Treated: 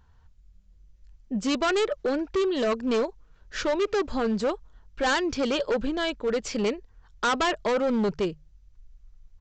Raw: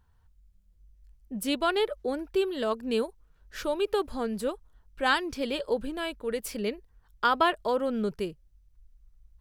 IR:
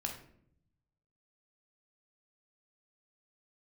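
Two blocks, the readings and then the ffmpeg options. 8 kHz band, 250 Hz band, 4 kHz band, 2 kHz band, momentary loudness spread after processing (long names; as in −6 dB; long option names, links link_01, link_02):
+5.0 dB, +5.0 dB, +2.5 dB, +2.0 dB, 7 LU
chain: -af "bandreject=frequency=50:width_type=h:width=6,bandreject=frequency=100:width_type=h:width=6,bandreject=frequency=150:width_type=h:width=6,aresample=16000,asoftclip=type=hard:threshold=-28dB,aresample=44100,volume=7dB"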